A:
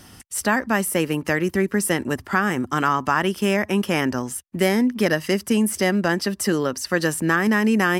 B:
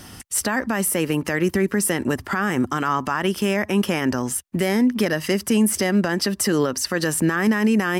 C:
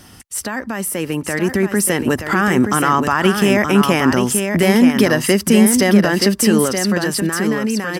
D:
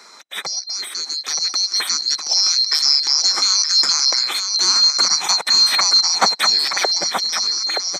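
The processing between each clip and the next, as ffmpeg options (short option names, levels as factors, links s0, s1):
-af "alimiter=limit=0.158:level=0:latency=1:release=100,volume=1.78"
-filter_complex "[0:a]dynaudnorm=f=250:g=13:m=3.55,asplit=2[s0][s1];[s1]aecho=0:1:925:0.501[s2];[s0][s2]amix=inputs=2:normalize=0,volume=0.794"
-af "afftfilt=real='real(if(lt(b,736),b+184*(1-2*mod(floor(b/184),2)),b),0)':imag='imag(if(lt(b,736),b+184*(1-2*mod(floor(b/184),2)),b),0)':win_size=2048:overlap=0.75,highpass=f=200:w=0.5412,highpass=f=200:w=1.3066,equalizer=f=340:t=q:w=4:g=3,equalizer=f=2900:t=q:w=4:g=-4,equalizer=f=4400:t=q:w=4:g=-9,equalizer=f=7100:t=q:w=4:g=-6,lowpass=f=7900:w=0.5412,lowpass=f=7900:w=1.3066,volume=1.68"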